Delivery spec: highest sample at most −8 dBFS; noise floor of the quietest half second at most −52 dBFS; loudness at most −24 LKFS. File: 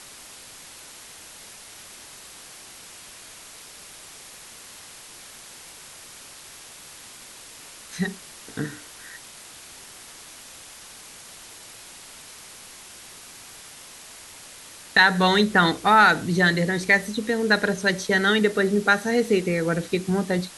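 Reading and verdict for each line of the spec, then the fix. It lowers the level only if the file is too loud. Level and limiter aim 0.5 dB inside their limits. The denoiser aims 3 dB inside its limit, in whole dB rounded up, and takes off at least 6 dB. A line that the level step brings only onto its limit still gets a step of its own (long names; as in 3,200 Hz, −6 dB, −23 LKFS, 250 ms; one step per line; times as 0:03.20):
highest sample −4.5 dBFS: out of spec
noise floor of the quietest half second −44 dBFS: out of spec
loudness −21.0 LKFS: out of spec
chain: broadband denoise 8 dB, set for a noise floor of −44 dBFS
level −3.5 dB
brickwall limiter −8.5 dBFS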